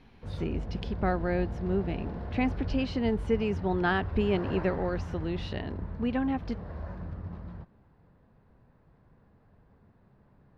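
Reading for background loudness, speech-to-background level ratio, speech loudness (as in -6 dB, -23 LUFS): -38.5 LUFS, 7.0 dB, -31.5 LUFS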